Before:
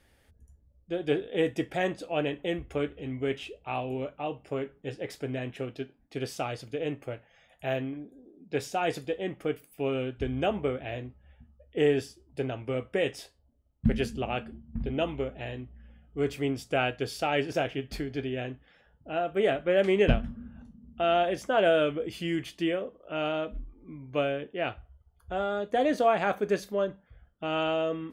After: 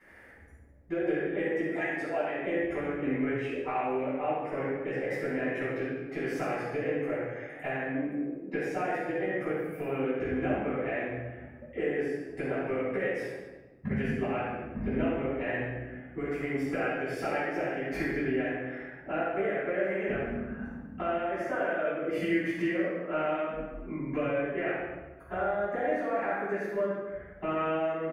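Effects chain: 1.71–2.30 s: harmonic-percussive separation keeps percussive; high-pass 350 Hz 6 dB/octave; resonant high shelf 2.6 kHz -10 dB, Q 3; compression 10:1, threshold -41 dBFS, peak gain reduction 22.5 dB; delay 141 ms -14.5 dB; simulated room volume 680 m³, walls mixed, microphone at 9.7 m; trim -3 dB

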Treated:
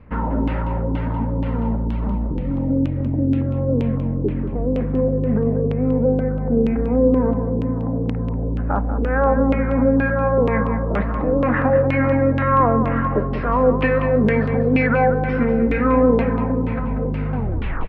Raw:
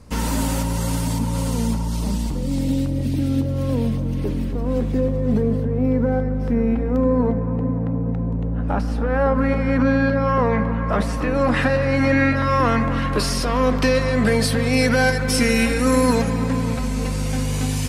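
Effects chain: tape stop on the ending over 0.54 s; distance through air 400 m; LFO low-pass saw down 2.1 Hz 340–2800 Hz; on a send: delay 190 ms -10 dB

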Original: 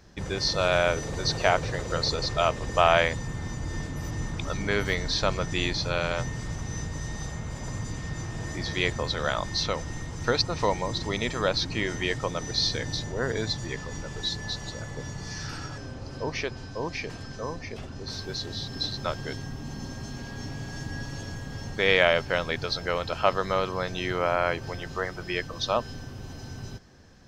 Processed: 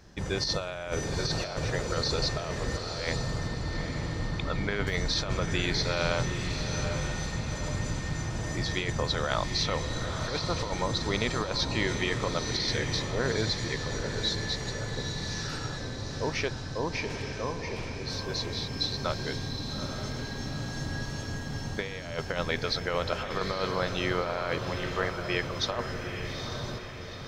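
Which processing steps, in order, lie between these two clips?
3.47–4.87 s: elliptic low-pass 3.7 kHz; compressor with a negative ratio -27 dBFS, ratio -0.5; echo that smears into a reverb 863 ms, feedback 51%, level -6.5 dB; trim -1.5 dB

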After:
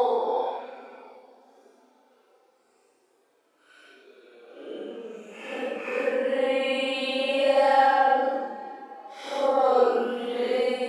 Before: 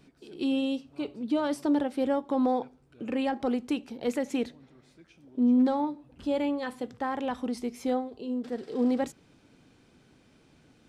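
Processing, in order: high-pass 420 Hz 24 dB/octave; Paulstretch 11×, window 0.05 s, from 2.58 s; trim +8.5 dB

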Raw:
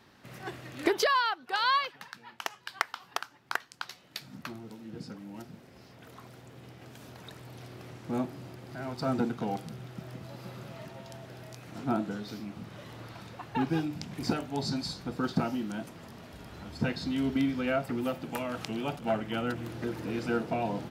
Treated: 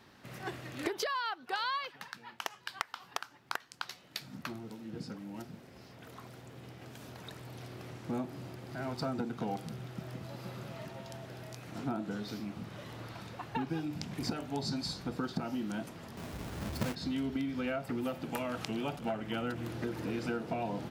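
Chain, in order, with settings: 16.17–16.95 s: square wave that keeps the level; compression 12:1, threshold -31 dBFS, peak gain reduction 11.5 dB

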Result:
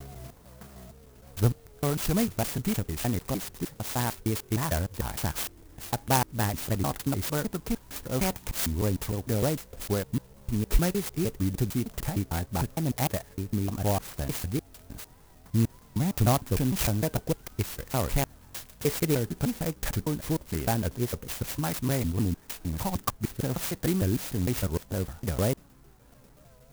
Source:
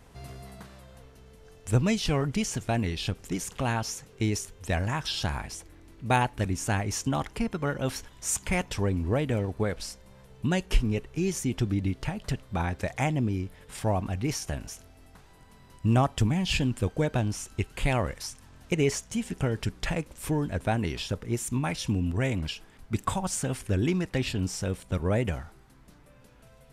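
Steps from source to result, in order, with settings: slices played last to first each 152 ms, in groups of 3; vibrato 3.3 Hz 87 cents; sampling jitter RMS 0.098 ms

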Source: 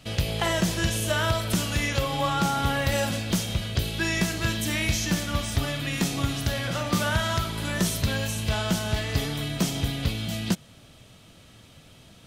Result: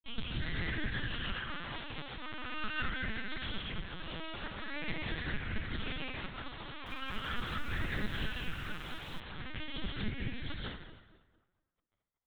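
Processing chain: elliptic band-stop 150–1300 Hz, stop band 40 dB; compression 4:1, threshold -30 dBFS, peak gain reduction 9.5 dB; crossover distortion -42 dBFS; phase shifter stages 6, 0.42 Hz, lowest notch 120–1000 Hz; full-wave rectifier; tape echo 230 ms, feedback 36%, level -8 dB, low-pass 2.4 kHz; reverberation RT60 0.85 s, pre-delay 139 ms, DRR -3 dB; LPC vocoder at 8 kHz pitch kept; 6.64–9.20 s: bit-crushed delay 220 ms, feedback 55%, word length 8-bit, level -12 dB

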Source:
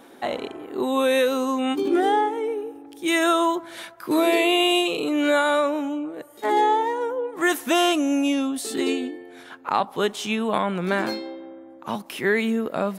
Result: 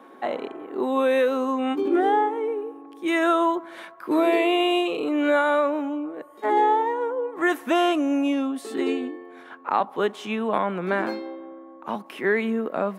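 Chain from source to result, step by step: whistle 1.1 kHz -51 dBFS; three-band isolator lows -22 dB, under 170 Hz, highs -13 dB, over 2.5 kHz

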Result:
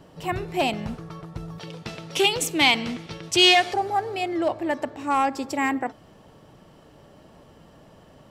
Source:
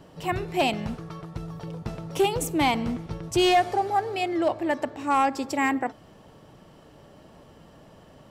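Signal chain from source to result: 1.58–3.74 s: frequency weighting D

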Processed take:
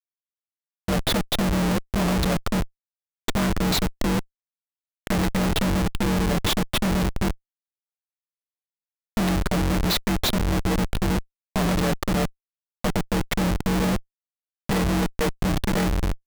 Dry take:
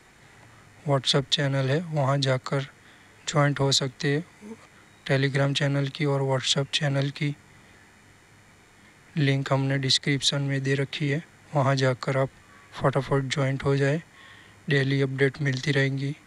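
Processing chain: frequency shift +47 Hz; Schmitt trigger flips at -23.5 dBFS; trim +5 dB

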